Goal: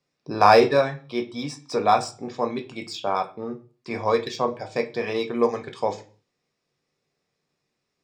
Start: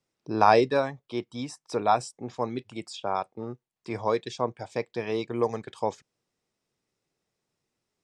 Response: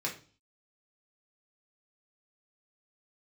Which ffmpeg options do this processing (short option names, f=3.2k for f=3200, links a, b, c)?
-filter_complex "[0:a]asplit=2[a][b];[1:a]atrim=start_sample=2205,highshelf=f=2.6k:g=8.5[c];[b][c]afir=irnorm=-1:irlink=0,volume=-4.5dB[d];[a][d]amix=inputs=2:normalize=0,adynamicsmooth=sensitivity=2.5:basefreq=6.7k"